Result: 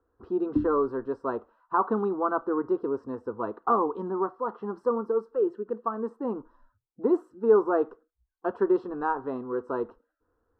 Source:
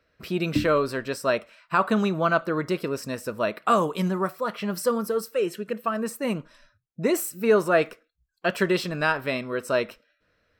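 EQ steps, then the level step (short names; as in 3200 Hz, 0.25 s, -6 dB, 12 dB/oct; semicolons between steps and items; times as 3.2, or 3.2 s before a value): synth low-pass 830 Hz, resonance Q 1.6; fixed phaser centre 610 Hz, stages 6; 0.0 dB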